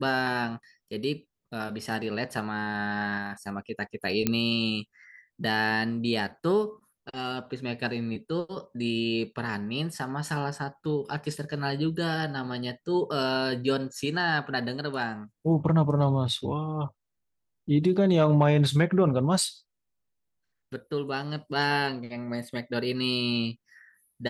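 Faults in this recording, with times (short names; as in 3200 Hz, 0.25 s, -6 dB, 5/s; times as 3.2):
4.27 pop -9 dBFS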